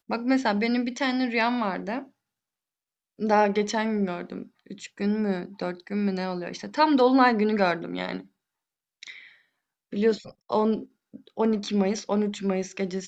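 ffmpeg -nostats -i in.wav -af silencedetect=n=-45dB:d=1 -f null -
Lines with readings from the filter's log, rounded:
silence_start: 2.07
silence_end: 3.19 | silence_duration: 1.12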